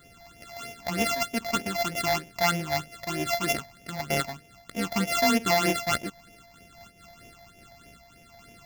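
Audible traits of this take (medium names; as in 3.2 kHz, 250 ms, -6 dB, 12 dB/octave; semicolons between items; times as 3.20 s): a buzz of ramps at a fixed pitch in blocks of 64 samples; phasing stages 8, 3.2 Hz, lowest notch 370–1300 Hz; random flutter of the level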